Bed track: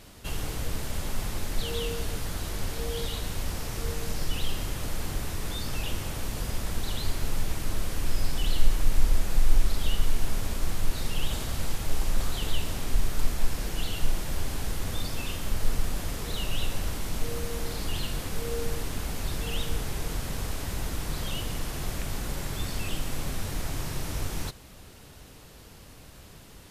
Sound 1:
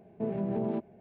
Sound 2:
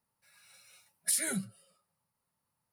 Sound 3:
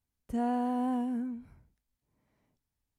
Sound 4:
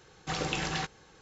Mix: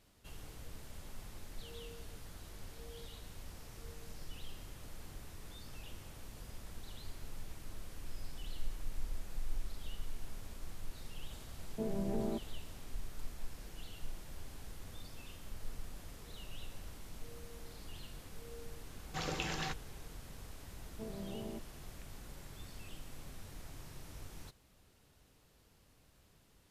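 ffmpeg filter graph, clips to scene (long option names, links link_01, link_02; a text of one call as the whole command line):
ffmpeg -i bed.wav -i cue0.wav -i cue1.wav -i cue2.wav -i cue3.wav -filter_complex "[1:a]asplit=2[link_01][link_02];[0:a]volume=-18dB[link_03];[link_01]atrim=end=1,asetpts=PTS-STARTPTS,volume=-6dB,afade=type=in:duration=0.004:curve=hsin,afade=type=out:start_time=0.996:duration=0.004:curve=hsin,adelay=11580[link_04];[4:a]atrim=end=1.21,asetpts=PTS-STARTPTS,volume=-6.5dB,afade=type=in:duration=0.004:curve=hsin,afade=type=out:start_time=1.206:duration=0.004:curve=hsin,adelay=18870[link_05];[link_02]atrim=end=1,asetpts=PTS-STARTPTS,volume=-13.5dB,afade=type=in:duration=0.004:curve=hsin,afade=type=out:start_time=0.996:duration=0.004:curve=hsin,adelay=20790[link_06];[link_03][link_04][link_05][link_06]amix=inputs=4:normalize=0" out.wav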